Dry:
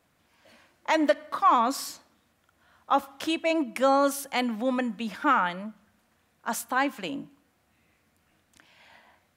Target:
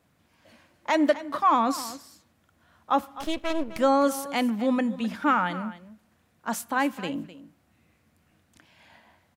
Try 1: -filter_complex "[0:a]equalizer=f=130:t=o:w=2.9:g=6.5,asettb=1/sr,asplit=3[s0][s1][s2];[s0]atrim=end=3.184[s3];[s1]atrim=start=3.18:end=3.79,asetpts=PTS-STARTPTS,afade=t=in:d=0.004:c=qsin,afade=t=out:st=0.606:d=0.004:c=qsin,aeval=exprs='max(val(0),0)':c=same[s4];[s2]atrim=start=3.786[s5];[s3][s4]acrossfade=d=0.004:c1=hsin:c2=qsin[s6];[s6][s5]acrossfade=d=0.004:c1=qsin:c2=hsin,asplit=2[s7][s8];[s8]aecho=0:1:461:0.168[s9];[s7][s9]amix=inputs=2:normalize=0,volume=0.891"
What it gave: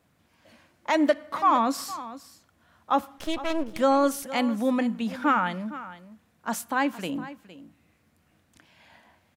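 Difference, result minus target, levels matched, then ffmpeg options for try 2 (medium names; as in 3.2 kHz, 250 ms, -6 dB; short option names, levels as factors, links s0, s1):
echo 205 ms late
-filter_complex "[0:a]equalizer=f=130:t=o:w=2.9:g=6.5,asettb=1/sr,asplit=3[s0][s1][s2];[s0]atrim=end=3.184[s3];[s1]atrim=start=3.18:end=3.79,asetpts=PTS-STARTPTS,afade=t=in:d=0.004:c=qsin,afade=t=out:st=0.606:d=0.004:c=qsin,aeval=exprs='max(val(0),0)':c=same[s4];[s2]atrim=start=3.786[s5];[s3][s4]acrossfade=d=0.004:c1=hsin:c2=qsin[s6];[s6][s5]acrossfade=d=0.004:c1=qsin:c2=hsin,asplit=2[s7][s8];[s8]aecho=0:1:256:0.168[s9];[s7][s9]amix=inputs=2:normalize=0,volume=0.891"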